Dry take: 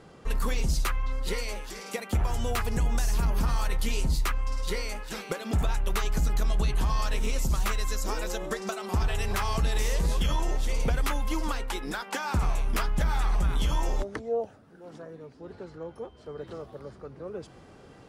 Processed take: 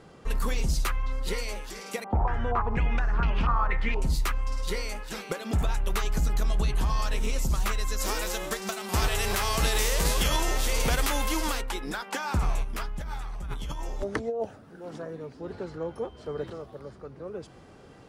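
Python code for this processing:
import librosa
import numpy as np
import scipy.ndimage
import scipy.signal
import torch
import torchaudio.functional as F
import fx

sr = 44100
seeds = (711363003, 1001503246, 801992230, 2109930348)

y = fx.filter_held_lowpass(x, sr, hz=4.2, low_hz=860.0, high_hz=2800.0, at=(2.04, 4.02))
y = fx.envelope_flatten(y, sr, power=0.6, at=(7.99, 11.6), fade=0.02)
y = fx.over_compress(y, sr, threshold_db=-31.0, ratio=-1.0, at=(12.63, 16.5))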